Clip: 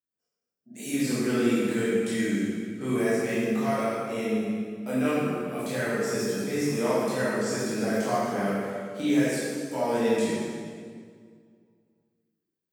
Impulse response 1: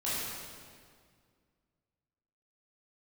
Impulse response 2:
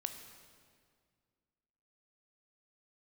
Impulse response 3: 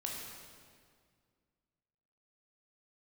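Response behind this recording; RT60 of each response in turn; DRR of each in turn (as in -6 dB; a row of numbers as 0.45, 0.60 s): 1; 2.0, 2.0, 2.0 s; -11.0, 6.0, -2.5 dB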